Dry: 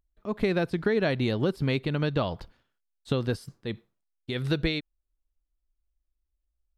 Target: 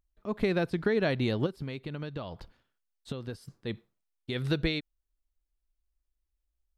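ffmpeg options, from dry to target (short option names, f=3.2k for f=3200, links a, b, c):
-filter_complex "[0:a]asettb=1/sr,asplit=3[a][b][c];[a]atrim=end=1.464[d];[b]atrim=start=1.46:end=3.54,asetpts=PTS-STARTPTS,afade=t=in:d=0.004:c=qsin,afade=t=out:st=2.076:d=0.004:c=qsin,acompressor=threshold=-33dB:ratio=4[e];[c]atrim=start=3.536[f];[d][e]acrossfade=d=0.004:c1=hsin:c2=qsin[g];[g][f]acrossfade=d=0.004:c1=qsin:c2=hsin,volume=-2dB"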